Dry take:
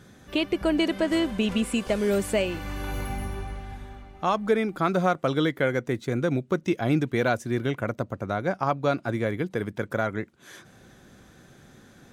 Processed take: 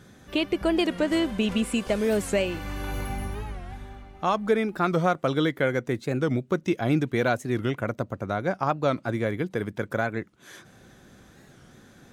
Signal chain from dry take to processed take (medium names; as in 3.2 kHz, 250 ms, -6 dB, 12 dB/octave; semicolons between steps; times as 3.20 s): warped record 45 rpm, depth 160 cents